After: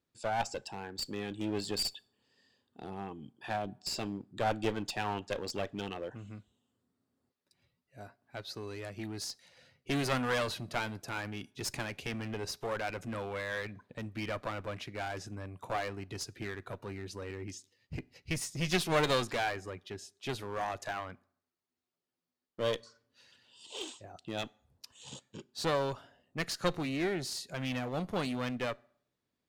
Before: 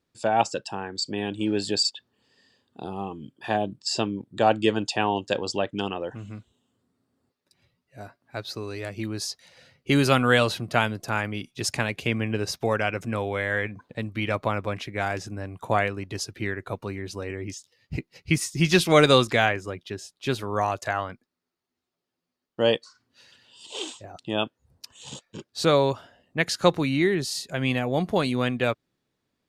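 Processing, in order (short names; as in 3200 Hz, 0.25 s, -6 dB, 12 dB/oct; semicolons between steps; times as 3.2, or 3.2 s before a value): one-sided clip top -27.5 dBFS; on a send: reverb RT60 0.65 s, pre-delay 4 ms, DRR 21.5 dB; on the sum: gain -7.5 dB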